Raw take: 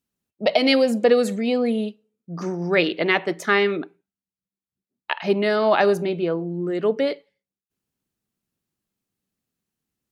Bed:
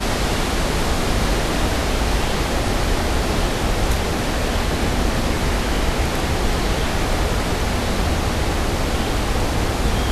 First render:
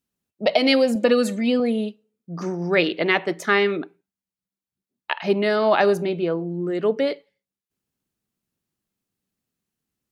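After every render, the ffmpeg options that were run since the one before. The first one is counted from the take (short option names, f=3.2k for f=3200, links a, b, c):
-filter_complex "[0:a]asettb=1/sr,asplit=3[a][b][c];[a]atrim=end=0.954[d];[b]atrim=start=0.95:end=1.6,asetpts=PTS-STARTPTS,afade=t=in:d=0.004:c=qsin,afade=t=out:st=0.646:d=0.004:c=qsin,aecho=1:1:3.4:0.65,atrim=end_sample=28665[e];[c]atrim=start=1.596[f];[d][e]acrossfade=d=0.004:c1=hsin:c2=qsin[g];[g][f]acrossfade=d=0.004:c1=qsin:c2=hsin"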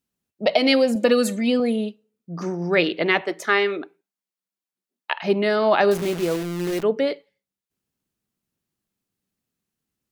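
-filter_complex "[0:a]asettb=1/sr,asplit=3[a][b][c];[a]atrim=end=0.964[d];[b]atrim=start=0.96:end=1.76,asetpts=PTS-STARTPTS,afade=t=in:d=0.004:c=qsin,afade=t=out:st=0.796:d=0.004:c=qsin,highshelf=f=7.7k:g=9[e];[c]atrim=start=1.756[f];[d][e]acrossfade=d=0.004:c1=hsin:c2=qsin[g];[g][f]acrossfade=d=0.004:c1=qsin:c2=hsin,asettb=1/sr,asplit=3[h][i][j];[h]atrim=end=3.214[k];[i]atrim=start=3.21:end=5.16,asetpts=PTS-STARTPTS,afade=t=in:d=0.004:c=qsin,afade=t=out:st=1.946:d=0.004:c=qsin,highpass=320[l];[j]atrim=start=5.156[m];[k][l]acrossfade=d=0.004:c1=hsin:c2=qsin[n];[n][m]acrossfade=d=0.004:c1=qsin:c2=hsin,asettb=1/sr,asplit=3[o][p][q];[o]atrim=end=5.914[r];[p]atrim=start=5.91:end=6.83,asetpts=PTS-STARTPTS,afade=t=in:d=0.004:c=qsin,afade=t=out:st=0.916:d=0.004:c=qsin,acrusher=bits=6:dc=4:mix=0:aa=0.000001[s];[q]atrim=start=6.826[t];[r][s]acrossfade=d=0.004:c1=hsin:c2=qsin[u];[u][t]acrossfade=d=0.004:c1=qsin:c2=hsin"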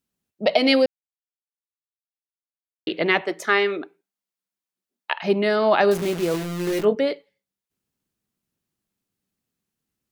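-filter_complex "[0:a]asettb=1/sr,asplit=3[a][b][c];[a]atrim=end=6.324[d];[b]atrim=start=6.32:end=6.95,asetpts=PTS-STARTPTS,afade=t=in:d=0.004:c=qsin,afade=t=out:st=0.626:d=0.004:c=qsin,asplit=2[e][f];[f]adelay=19,volume=-5dB[g];[e][g]amix=inputs=2:normalize=0,atrim=end_sample=27783[h];[c]atrim=start=6.946[i];[d][h]acrossfade=d=0.004:c1=hsin:c2=qsin[j];[j][i]acrossfade=d=0.004:c1=qsin:c2=hsin,asplit=3[k][l][m];[k]atrim=end=0.86,asetpts=PTS-STARTPTS,afade=t=out:st=0.856:d=0.004:c=hsin[n];[l]atrim=start=0.86:end=2.87,asetpts=PTS-STARTPTS,volume=0[o];[m]atrim=start=2.87,asetpts=PTS-STARTPTS,afade=t=in:d=0.004:c=hsin[p];[n][o][p]concat=n=3:v=0:a=1"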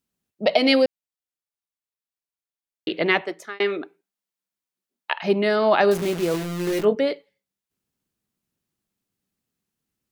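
-filter_complex "[0:a]asplit=2[a][b];[a]atrim=end=3.6,asetpts=PTS-STARTPTS,afade=t=out:st=3.13:d=0.47[c];[b]atrim=start=3.6,asetpts=PTS-STARTPTS,afade=t=in:d=0.004:c=hsin[d];[c][d]concat=n=2:v=0:a=1"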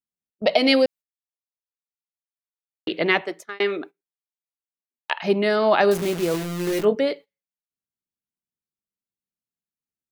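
-af "highshelf=f=6.3k:g=3,agate=range=-18dB:threshold=-38dB:ratio=16:detection=peak"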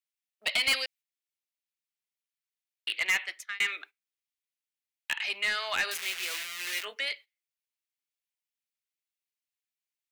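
-af "highpass=f=2.2k:t=q:w=1.7,asoftclip=type=tanh:threshold=-21dB"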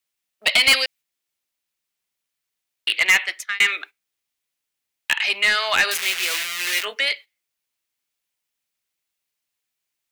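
-af "volume=11dB"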